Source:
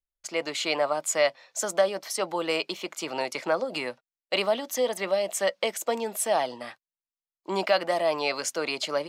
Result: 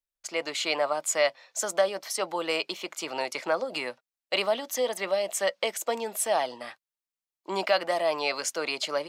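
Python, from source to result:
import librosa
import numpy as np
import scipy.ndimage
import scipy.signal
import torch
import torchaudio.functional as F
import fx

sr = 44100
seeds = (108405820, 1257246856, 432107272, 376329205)

y = fx.low_shelf(x, sr, hz=280.0, db=-7.5)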